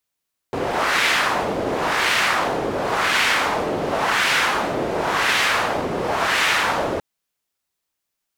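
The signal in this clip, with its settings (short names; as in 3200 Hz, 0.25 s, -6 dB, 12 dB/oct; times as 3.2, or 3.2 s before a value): wind-like swept noise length 6.47 s, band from 450 Hz, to 2100 Hz, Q 1.2, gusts 6, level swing 5.5 dB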